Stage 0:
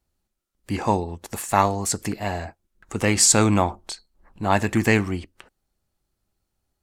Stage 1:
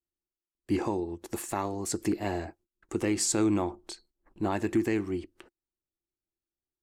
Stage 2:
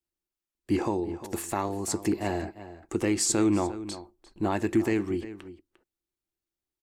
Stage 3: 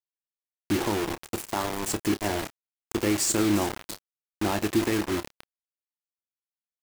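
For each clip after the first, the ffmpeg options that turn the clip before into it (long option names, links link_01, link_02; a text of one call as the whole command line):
ffmpeg -i in.wav -af "agate=range=-17dB:threshold=-52dB:ratio=16:detection=peak,equalizer=frequency=340:width_type=o:width=0.52:gain=15,alimiter=limit=-10dB:level=0:latency=1:release=470,volume=-7dB" out.wav
ffmpeg -i in.wav -filter_complex "[0:a]asplit=2[link_01][link_02];[link_02]adelay=349.9,volume=-14dB,highshelf=frequency=4000:gain=-7.87[link_03];[link_01][link_03]amix=inputs=2:normalize=0,volume=2dB" out.wav
ffmpeg -i in.wav -filter_complex "[0:a]acrusher=bits=4:mix=0:aa=0.000001,asplit=2[link_01][link_02];[link_02]adelay=29,volume=-13dB[link_03];[link_01][link_03]amix=inputs=2:normalize=0" out.wav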